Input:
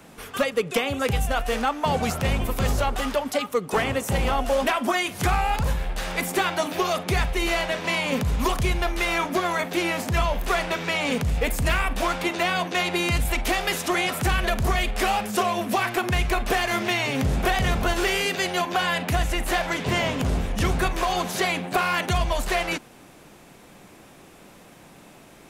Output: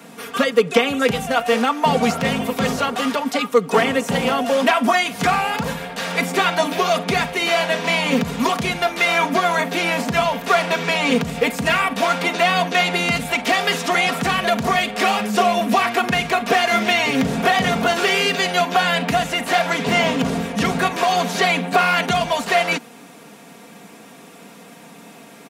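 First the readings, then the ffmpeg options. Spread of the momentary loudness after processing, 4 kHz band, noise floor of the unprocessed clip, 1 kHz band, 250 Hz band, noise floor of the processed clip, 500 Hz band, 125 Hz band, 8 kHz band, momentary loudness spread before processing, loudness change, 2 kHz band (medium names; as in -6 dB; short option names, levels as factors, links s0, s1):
4 LU, +6.5 dB, -49 dBFS, +6.5 dB, +6.5 dB, -43 dBFS, +6.5 dB, -1.0 dB, +3.0 dB, 2 LU, +5.5 dB, +6.5 dB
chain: -filter_complex "[0:a]highpass=f=120:w=0.5412,highpass=f=120:w=1.3066,acrossover=split=6600[s0][s1];[s1]acompressor=threshold=0.00631:ratio=4:attack=1:release=60[s2];[s0][s2]amix=inputs=2:normalize=0,aecho=1:1:4.3:0.63,volume=1.78"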